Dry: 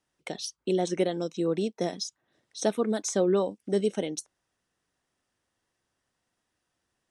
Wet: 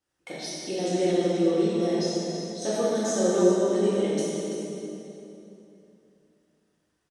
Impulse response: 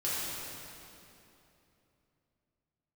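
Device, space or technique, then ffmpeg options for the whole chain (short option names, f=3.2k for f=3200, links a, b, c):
cave: -filter_complex "[0:a]aecho=1:1:334:0.299[a];[1:a]atrim=start_sample=2205[b];[a][b]afir=irnorm=-1:irlink=0,volume=-4.5dB"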